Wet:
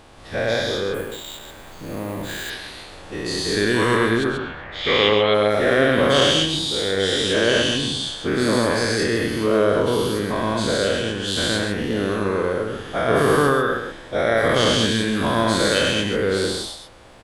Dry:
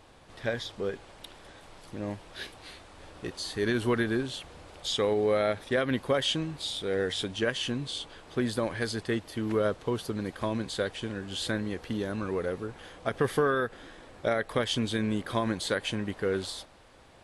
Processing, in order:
every bin's largest magnitude spread in time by 240 ms
0:04.23–0:05.33: low-pass with resonance 1,200 Hz → 3,400 Hz, resonance Q 7.7
single-tap delay 134 ms −6.5 dB
0:00.94–0:02.50: bad sample-rate conversion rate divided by 4×, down filtered, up hold
level +3 dB

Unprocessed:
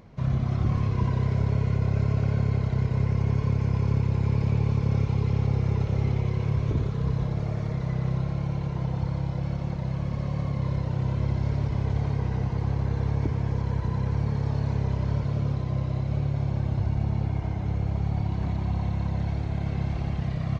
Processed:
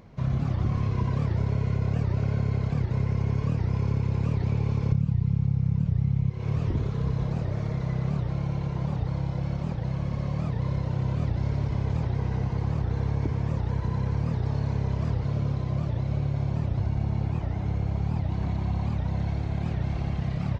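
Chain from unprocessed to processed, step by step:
0:04.92–0:06.30: low shelf with overshoot 230 Hz +9.5 dB, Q 3
downward compressor 12 to 1, threshold −20 dBFS, peak gain reduction 14.5 dB
wow of a warped record 78 rpm, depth 250 cents

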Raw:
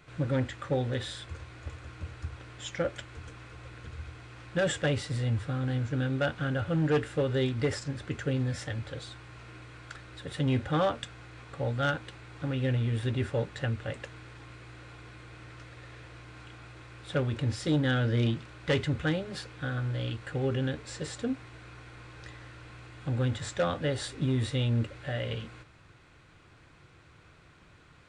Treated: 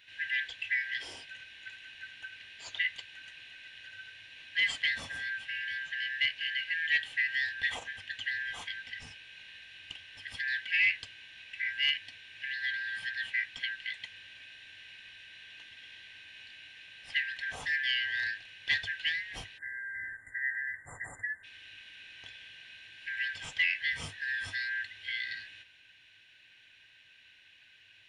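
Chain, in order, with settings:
band-splitting scrambler in four parts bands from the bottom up 4123
thirty-one-band graphic EQ 100 Hz +10 dB, 200 Hz −6 dB, 400 Hz −4 dB, 1,600 Hz −10 dB, 2,500 Hz +6 dB, 5,000 Hz −11 dB, 8,000 Hz −11 dB
time-frequency box erased 0:19.58–0:21.44, 2,100–7,100 Hz

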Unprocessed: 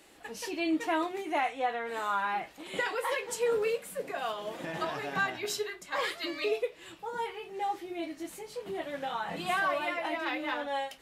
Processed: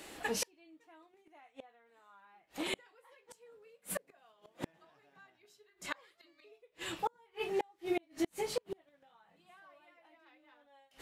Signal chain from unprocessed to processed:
gate with flip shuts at −30 dBFS, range −38 dB
level +7.5 dB

